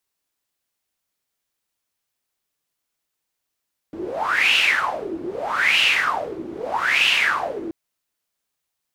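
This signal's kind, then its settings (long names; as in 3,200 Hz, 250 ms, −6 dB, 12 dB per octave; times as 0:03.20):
wind from filtered noise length 3.78 s, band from 320 Hz, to 2,800 Hz, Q 8.5, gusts 3, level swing 14.5 dB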